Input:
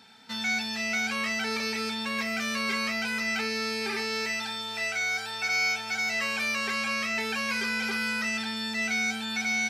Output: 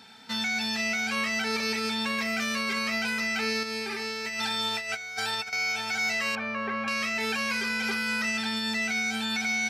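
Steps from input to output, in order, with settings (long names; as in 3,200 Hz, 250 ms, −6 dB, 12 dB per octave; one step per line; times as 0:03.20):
0:03.63–0:05.53: compressor whose output falls as the input rises −34 dBFS, ratio −0.5
0:06.35–0:06.88: low-pass filter 1,400 Hz 12 dB per octave
brickwall limiter −24 dBFS, peak gain reduction 7.5 dB
level +3.5 dB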